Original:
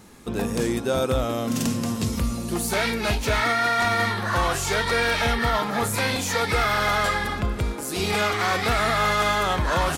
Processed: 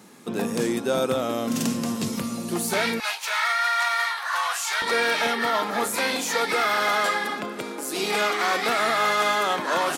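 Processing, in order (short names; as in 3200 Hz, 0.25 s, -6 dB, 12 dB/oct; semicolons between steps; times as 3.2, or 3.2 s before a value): HPF 150 Hz 24 dB/oct, from 3 s 860 Hz, from 4.82 s 230 Hz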